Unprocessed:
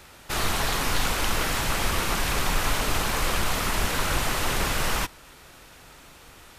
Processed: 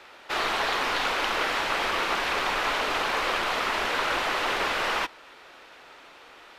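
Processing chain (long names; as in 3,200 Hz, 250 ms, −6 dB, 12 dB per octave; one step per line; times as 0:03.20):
three-way crossover with the lows and the highs turned down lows −22 dB, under 310 Hz, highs −19 dB, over 4,500 Hz
level +2.5 dB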